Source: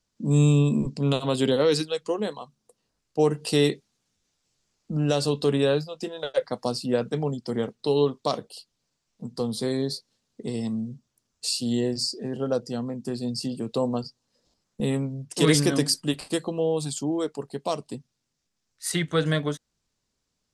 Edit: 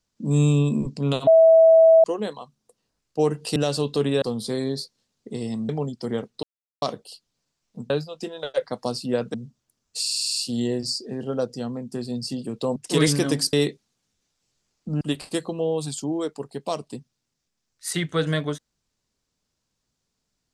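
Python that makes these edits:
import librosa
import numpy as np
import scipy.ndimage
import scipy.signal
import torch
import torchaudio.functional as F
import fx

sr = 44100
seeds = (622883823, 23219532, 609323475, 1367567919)

y = fx.edit(x, sr, fx.bleep(start_s=1.27, length_s=0.77, hz=651.0, db=-9.5),
    fx.move(start_s=3.56, length_s=1.48, to_s=16.0),
    fx.swap(start_s=5.7, length_s=1.44, other_s=9.35, other_length_s=1.47),
    fx.silence(start_s=7.88, length_s=0.39),
    fx.stutter(start_s=11.49, slice_s=0.05, count=8),
    fx.cut(start_s=13.89, length_s=1.34), tone=tone)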